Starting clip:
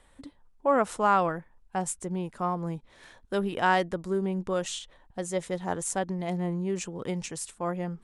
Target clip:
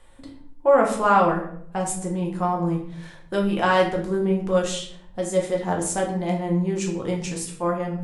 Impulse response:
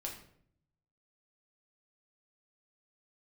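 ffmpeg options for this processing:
-filter_complex "[1:a]atrim=start_sample=2205[s0];[0:a][s0]afir=irnorm=-1:irlink=0,volume=2.11"

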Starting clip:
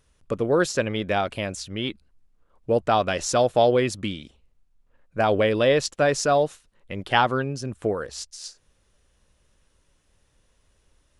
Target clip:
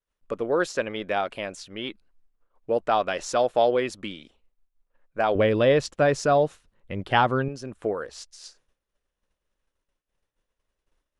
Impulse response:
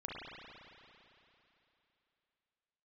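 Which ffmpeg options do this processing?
-af "highshelf=f=3800:g=-9.5,agate=range=0.0224:threshold=0.002:ratio=3:detection=peak,asetnsamples=n=441:p=0,asendcmd='5.35 equalizer g 2;7.48 equalizer g -10.5',equalizer=f=88:w=0.49:g=-15"

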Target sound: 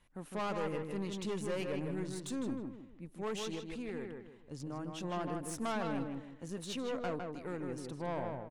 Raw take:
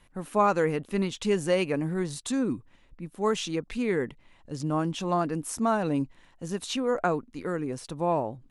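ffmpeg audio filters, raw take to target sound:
-filter_complex "[0:a]asettb=1/sr,asplit=3[s0][s1][s2];[s0]atrim=end=3.544[s3];[s1]atrim=start=3.54:end=4.97,asetpts=PTS-STARTPTS,afade=t=in:d=0.004:c=qsin,afade=t=out:st=1.426:d=0.004:c=qsin,acompressor=threshold=0.0316:ratio=4[s4];[s2]atrim=start=4.966[s5];[s3][s4]acrossfade=d=0.004:c1=hsin:c2=qsin[s6];[s6][s5]acrossfade=d=0.004:c1=qsin:c2=hsin,asettb=1/sr,asplit=3[s7][s8][s9];[s7]atrim=end=5.514[s10];[s8]atrim=start=5.51:end=6.45,asetpts=PTS-STARTPTS,afade=t=in:d=0.004:c=qsin,afade=t=out:st=0.936:d=0.004:c=qsin,equalizer=f=1700:t=o:w=2.3:g=6.5[s11];[s9]atrim=start=6.446[s12];[s10][s11]acrossfade=d=0.004:c1=hsin:c2=qsin[s13];[s13][s12]acrossfade=d=0.004:c1=qsin:c2=hsin,aeval=exprs='(tanh(17.8*val(0)+0.4)-tanh(0.4))/17.8':c=same,asplit=2[s14][s15];[s15]adelay=157,lowpass=f=2500:p=1,volume=0.631,asplit=2[s16][s17];[s17]adelay=157,lowpass=f=2500:p=1,volume=0.34,asplit=2[s18][s19];[s19]adelay=157,lowpass=f=2500:p=1,volume=0.34,asplit=2[s20][s21];[s21]adelay=157,lowpass=f=2500:p=1,volume=0.34[s22];[s14][s16][s18][s20][s22]amix=inputs=5:normalize=0,volume=0.398"

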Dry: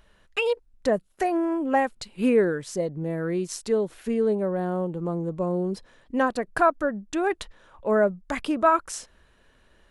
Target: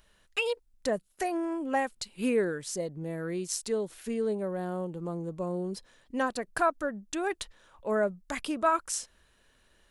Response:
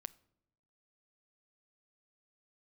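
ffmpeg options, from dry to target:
-af "highshelf=f=3300:g=11,volume=0.447"

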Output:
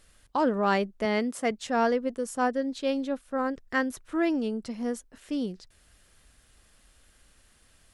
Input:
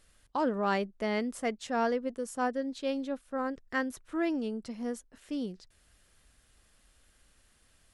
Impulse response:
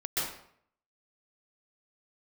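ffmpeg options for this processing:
-filter_complex "[0:a]asettb=1/sr,asplit=3[s0][s1][s2];[s0]atrim=end=1.054[s3];[s1]atrim=start=1.05:end=1.51,asetpts=PTS-STARTPTS,afade=t=in:d=0.004:c=qsin,afade=t=out:st=0.456:d=0.004:c=qsin,highpass=130[s4];[s2]atrim=start=1.506[s5];[s3][s4]acrossfade=d=0.004:c1=hsin:c2=qsin[s6];[s6][s5]acrossfade=d=0.004:c1=qsin:c2=hsin,volume=1.68"

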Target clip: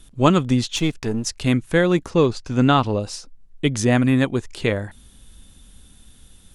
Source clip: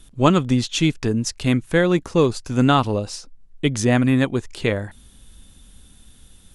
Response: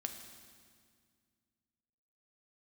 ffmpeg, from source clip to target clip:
-filter_complex "[0:a]asettb=1/sr,asplit=3[s0][s1][s2];[s0]atrim=end=0.764[s3];[s1]atrim=start=0.76:end=1.25,asetpts=PTS-STARTPTS,afade=t=in:d=0.004:c=qsin,afade=t=out:st=0.486:d=0.004:c=qsin,aeval=exprs='if(lt(val(0),0),0.447*val(0),val(0))':c=same[s4];[s2]atrim=start=1.246[s5];[s3][s4]acrossfade=d=0.004:c1=hsin:c2=qsin[s6];[s6][s5]acrossfade=d=0.004:c1=qsin:c2=hsin,asettb=1/sr,asplit=3[s7][s8][s9];[s7]atrim=end=2.104[s10];[s8]atrim=start=2.1:end=3,asetpts=PTS-STARTPTS,afade=t=in:d=0.004:c=qsin,afade=t=out:st=0.896:d=0.004:c=qsin,lowpass=5900[s11];[s9]atrim=start=2.996[s12];[s10][s11]acrossfade=d=0.004:c1=hsin:c2=qsin[s13];[s13][s12]acrossfade=d=0.004:c1=qsin:c2=hsin"

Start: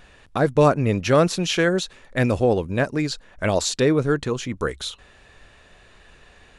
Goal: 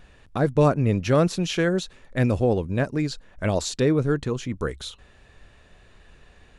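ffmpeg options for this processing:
-af "lowshelf=f=340:g=7,volume=0.531"

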